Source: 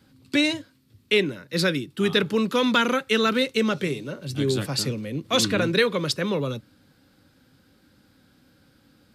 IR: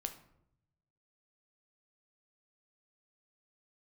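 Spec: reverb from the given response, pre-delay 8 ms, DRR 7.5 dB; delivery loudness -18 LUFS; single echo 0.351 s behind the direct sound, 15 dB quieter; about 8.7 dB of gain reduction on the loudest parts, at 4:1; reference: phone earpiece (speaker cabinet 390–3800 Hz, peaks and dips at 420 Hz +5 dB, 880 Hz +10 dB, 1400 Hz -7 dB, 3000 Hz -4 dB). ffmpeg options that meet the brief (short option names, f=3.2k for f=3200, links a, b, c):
-filter_complex "[0:a]acompressor=threshold=-26dB:ratio=4,aecho=1:1:351:0.178,asplit=2[a][b];[1:a]atrim=start_sample=2205,adelay=8[c];[b][c]afir=irnorm=-1:irlink=0,volume=-6dB[d];[a][d]amix=inputs=2:normalize=0,highpass=390,equalizer=f=420:t=q:w=4:g=5,equalizer=f=880:t=q:w=4:g=10,equalizer=f=1.4k:t=q:w=4:g=-7,equalizer=f=3k:t=q:w=4:g=-4,lowpass=f=3.8k:w=0.5412,lowpass=f=3.8k:w=1.3066,volume=13dB"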